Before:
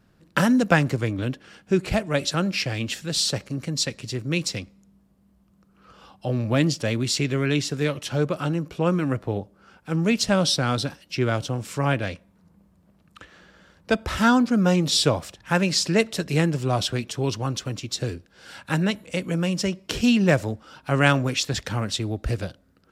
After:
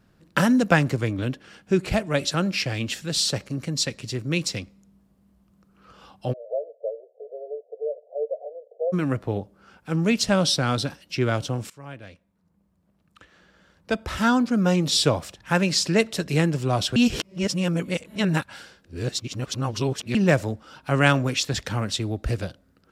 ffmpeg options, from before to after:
-filter_complex "[0:a]asplit=3[a][b][c];[a]afade=t=out:st=6.32:d=0.02[d];[b]asuperpass=centerf=560:order=12:qfactor=2,afade=t=in:st=6.32:d=0.02,afade=t=out:st=8.92:d=0.02[e];[c]afade=t=in:st=8.92:d=0.02[f];[d][e][f]amix=inputs=3:normalize=0,asplit=4[g][h][i][j];[g]atrim=end=11.7,asetpts=PTS-STARTPTS,afade=t=out:st=11.696:d=0.004:c=hsin:silence=0.0891251[k];[h]atrim=start=11.7:end=16.962,asetpts=PTS-STARTPTS,afade=t=in:d=3.4:silence=0.0891251[l];[i]atrim=start=16.958:end=20.152,asetpts=PTS-STARTPTS,areverse[m];[j]atrim=start=20.148[n];[k][l]concat=n=2:v=0:a=1[o];[o][m]acrossfade=d=0.004:c1=hsin:c2=hsin[p];[p][n]acrossfade=d=0.004:c1=hsin:c2=hsin"

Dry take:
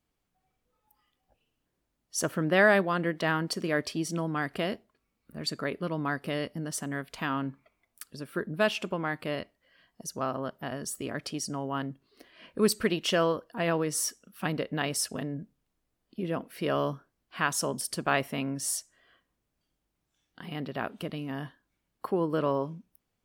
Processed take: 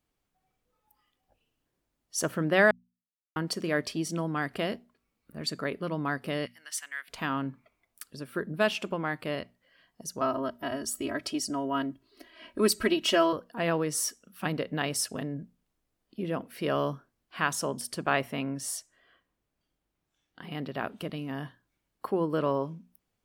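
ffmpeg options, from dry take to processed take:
-filter_complex "[0:a]asettb=1/sr,asplit=3[a][b][c];[a]atrim=end=6.464[d];[b]atrim=start=6.46:end=7.08,asetpts=PTS-STARTPTS,afade=t=in:d=0.004:c=qsin,afade=t=out:st=0.616:d=0.004:c=qsin,highpass=f=2k:t=q:w=1.7[e];[c]atrim=start=7.076[f];[d][e]acrossfade=d=0.004:c1=hsin:c2=qsin[g];[g][f]acrossfade=d=0.004:c1=qsin:c2=hsin,asettb=1/sr,asplit=3[h][i][j];[h]atrim=end=10.214[k];[i]atrim=start=10.21:end=13.33,asetpts=PTS-STARTPTS,afade=t=in:d=0.004:c=qsin,afade=t=out:st=3.116:d=0.004:c=qsin,aecho=1:1:3.1:0.82,atrim=end_sample=137592[l];[j]atrim=start=13.326[m];[k][l]acrossfade=d=0.004:c1=hsin:c2=qsin[n];[n][m]acrossfade=d=0.004:c1=qsin:c2=hsin,asettb=1/sr,asplit=3[o][p][q];[o]atrim=end=17.554[r];[p]atrim=start=17.55:end=20.52,asetpts=PTS-STARTPTS,afade=t=in:d=0.004:c=qsin,afade=t=out:st=2.966:d=0.004:c=qsin,bass=f=250:g=-1,treble=f=4k:g=-4[s];[q]atrim=start=20.516[t];[r][s]acrossfade=d=0.004:c1=hsin:c2=qsin[u];[u][t]acrossfade=d=0.004:c1=qsin:c2=hsin,asplit=3[v][w][x];[v]atrim=end=2.71,asetpts=PTS-STARTPTS,afade=t=out:st=2.706:d=0.004:c=hsin[y];[w]atrim=start=2.71:end=3.36,asetpts=PTS-STARTPTS,volume=0[z];[x]atrim=start=3.36,asetpts=PTS-STARTPTS,afade=t=in:d=0.004:c=hsin[aa];[y][z][aa]concat=n=3:v=0:a=1,bandreject=f=60:t=h:w=6,bandreject=f=120:t=h:w=6,bandreject=f=180:t=h:w=6,bandreject=f=240:t=h:w=6"

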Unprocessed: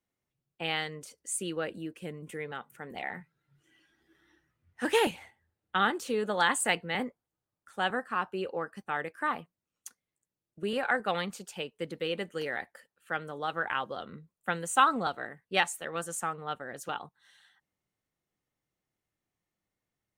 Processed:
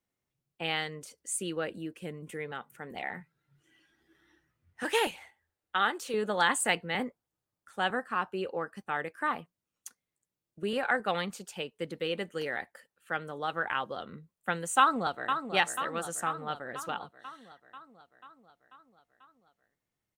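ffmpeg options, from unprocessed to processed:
-filter_complex "[0:a]asettb=1/sr,asplit=3[a][b][c];[a]atrim=end=4.834[d];[b]atrim=start=4.83:end=6.14,asetpts=PTS-STARTPTS,afade=t=in:d=0.004:c=qsin,afade=t=out:st=1.306:d=0.004:c=qsin,equalizer=f=140:t=o:w=2.3:g=-12[e];[c]atrim=start=6.136[f];[d][e]acrossfade=d=0.004:c1=hsin:c2=qsin[g];[g][f]acrossfade=d=0.004:c1=qsin:c2=hsin,asplit=2[h][i];[i]afade=t=in:st=14.79:d=0.01,afade=t=out:st=15.39:d=0.01,aecho=0:1:490|980|1470|1960|2450|2940|3430|3920|4410:0.421697|0.274103|0.178167|0.115808|0.0752755|0.048929|0.0318039|0.0206725|0.0134371[j];[h][j]amix=inputs=2:normalize=0"

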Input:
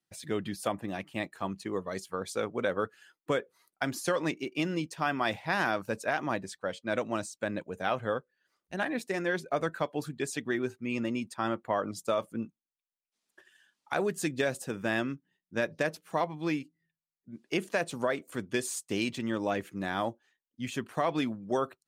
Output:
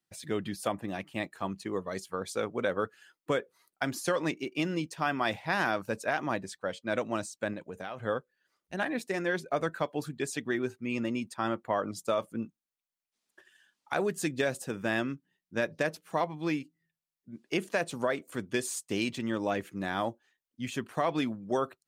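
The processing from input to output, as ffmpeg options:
-filter_complex "[0:a]asettb=1/sr,asplit=3[a][b][c];[a]atrim=end=7.534[d];[b]atrim=start=7.53:end=8.02,asetpts=PTS-STARTPTS,afade=t=in:d=0.004:c=qsin,afade=t=out:st=0.486:d=0.004:c=qsin,acompressor=threshold=-35dB:ratio=5:attack=3.2:release=140:knee=1:detection=peak[e];[c]atrim=start=8.016[f];[d][e]acrossfade=d=0.004:c1=hsin:c2=qsin[g];[g][f]acrossfade=d=0.004:c1=qsin:c2=hsin"

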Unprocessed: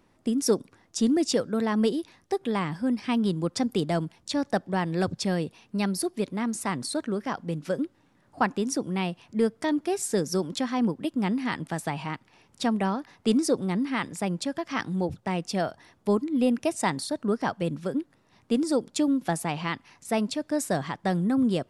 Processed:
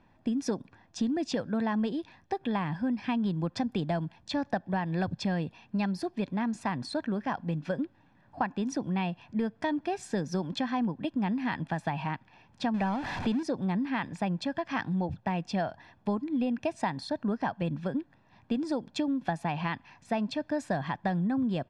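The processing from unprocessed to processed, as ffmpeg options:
-filter_complex "[0:a]asettb=1/sr,asplit=3[a][b][c];[a]atrim=end=12.744[d];[b]atrim=start=12.74:end=13.43,asetpts=PTS-STARTPTS,afade=t=in:d=0.004:c=qsin,afade=t=out:st=0.686:d=0.004:c=qsin,aeval=exprs='val(0)+0.5*0.0316*sgn(val(0))':c=same[e];[c]atrim=start=13.426[f];[d][e]acrossfade=d=0.004:c1=hsin:c2=qsin[g];[g][f]acrossfade=d=0.004:c1=qsin:c2=hsin,lowpass=3.3k,aecho=1:1:1.2:0.49,acompressor=threshold=-26dB:ratio=6"

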